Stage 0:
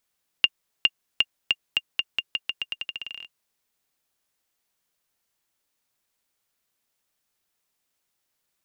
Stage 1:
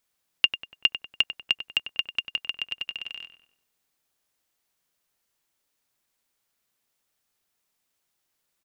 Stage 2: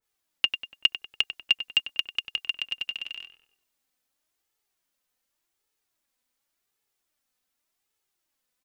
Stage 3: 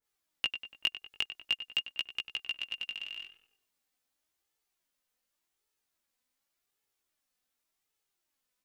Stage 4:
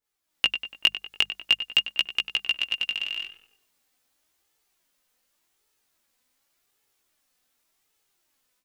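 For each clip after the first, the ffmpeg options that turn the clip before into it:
-filter_complex "[0:a]asplit=2[a][b];[b]adelay=96,lowpass=f=2.3k:p=1,volume=-9.5dB,asplit=2[c][d];[d]adelay=96,lowpass=f=2.3k:p=1,volume=0.5,asplit=2[e][f];[f]adelay=96,lowpass=f=2.3k:p=1,volume=0.5,asplit=2[g][h];[h]adelay=96,lowpass=f=2.3k:p=1,volume=0.5,asplit=2[i][j];[j]adelay=96,lowpass=f=2.3k:p=1,volume=0.5,asplit=2[k][l];[l]adelay=96,lowpass=f=2.3k:p=1,volume=0.5[m];[a][c][e][g][i][k][m]amix=inputs=7:normalize=0"
-af "flanger=delay=2.3:depth=1.7:regen=35:speed=0.88:shape=sinusoidal,adynamicequalizer=threshold=0.0112:dfrequency=2300:dqfactor=0.7:tfrequency=2300:tqfactor=0.7:attack=5:release=100:ratio=0.375:range=3:mode=boostabove:tftype=highshelf,volume=1dB"
-filter_complex "[0:a]asplit=2[a][b];[b]acompressor=threshold=-32dB:ratio=6,volume=2.5dB[c];[a][c]amix=inputs=2:normalize=0,flanger=delay=15:depth=4.6:speed=0.46,volume=-7.5dB"
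-af "bandreject=f=50:t=h:w=6,bandreject=f=100:t=h:w=6,bandreject=f=150:t=h:w=6,bandreject=f=200:t=h:w=6,dynaudnorm=f=220:g=3:m=10.5dB"

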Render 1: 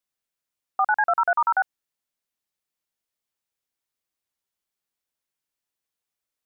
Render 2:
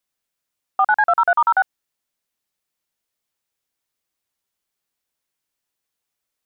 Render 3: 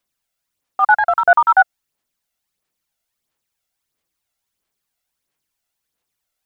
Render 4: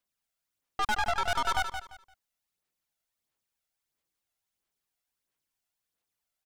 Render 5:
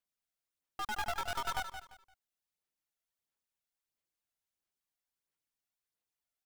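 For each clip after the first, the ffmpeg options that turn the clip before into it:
-af "acontrast=30"
-af "aphaser=in_gain=1:out_gain=1:delay=1.5:decay=0.49:speed=1.5:type=sinusoidal,volume=1.5dB"
-af "aeval=exprs='(tanh(11.2*val(0)+0.65)-tanh(0.65))/11.2':c=same,aecho=1:1:172|344|516:0.376|0.0902|0.0216,volume=-5dB"
-af "acrusher=bits=2:mode=log:mix=0:aa=0.000001,volume=-8dB"

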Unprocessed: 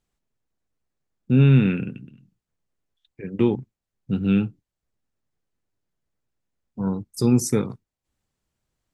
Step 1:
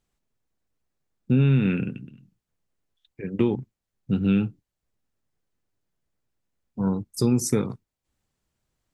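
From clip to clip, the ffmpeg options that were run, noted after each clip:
-af "acompressor=threshold=-17dB:ratio=6,volume=1dB"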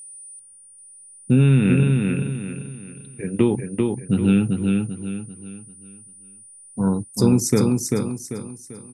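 -filter_complex "[0:a]aeval=exprs='val(0)+0.00794*sin(2*PI*9300*n/s)':c=same,asplit=2[a][b];[b]aecho=0:1:392|784|1176|1568|1960:0.668|0.247|0.0915|0.0339|0.0125[c];[a][c]amix=inputs=2:normalize=0,volume=4dB"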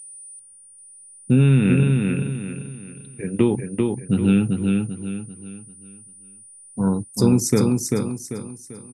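-af "aresample=32000,aresample=44100"

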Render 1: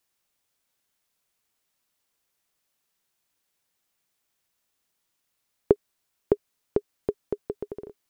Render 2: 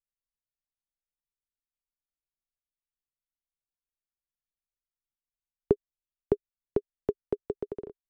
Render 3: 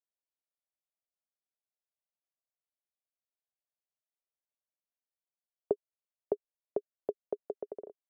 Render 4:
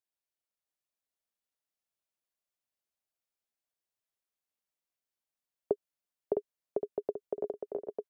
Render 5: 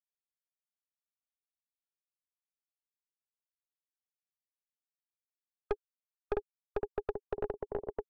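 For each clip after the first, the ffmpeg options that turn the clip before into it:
-filter_complex "[0:a]anlmdn=0.00398,acrossover=split=340[a][b];[b]alimiter=limit=-20dB:level=0:latency=1:release=12[c];[a][c]amix=inputs=2:normalize=0"
-af "bandpass=f=620:t=q:w=3.4:csg=0,volume=3.5dB"
-af "aecho=1:1:660|1122|1445|1672|1830:0.631|0.398|0.251|0.158|0.1"
-af "afftfilt=real='re*gte(hypot(re,im),0.00316)':imag='im*gte(hypot(re,im),0.00316)':win_size=1024:overlap=0.75,aeval=exprs='(tanh(31.6*val(0)+0.7)-tanh(0.7))/31.6':c=same,volume=4.5dB"

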